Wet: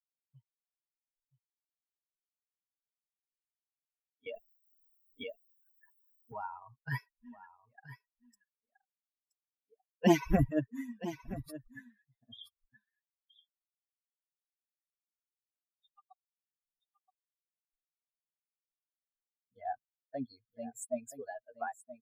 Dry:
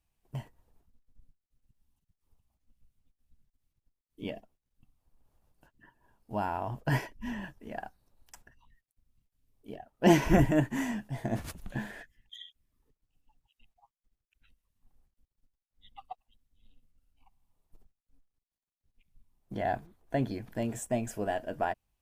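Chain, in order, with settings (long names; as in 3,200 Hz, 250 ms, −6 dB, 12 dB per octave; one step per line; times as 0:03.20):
spectral dynamics exaggerated over time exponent 3
single-tap delay 974 ms −14.5 dB
0:04.26–0:06.44: envelope flattener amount 100%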